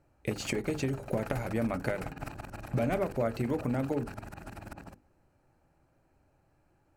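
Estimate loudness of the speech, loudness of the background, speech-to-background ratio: -33.0 LUFS, -45.0 LUFS, 12.0 dB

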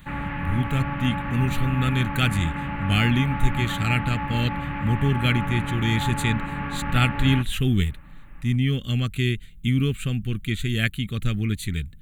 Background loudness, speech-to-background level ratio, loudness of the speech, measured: -29.5 LUFS, 5.0 dB, -24.5 LUFS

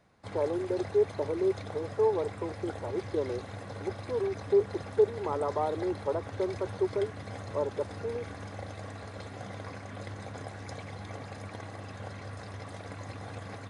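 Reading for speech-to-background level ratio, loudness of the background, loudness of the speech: 10.0 dB, -42.0 LUFS, -32.0 LUFS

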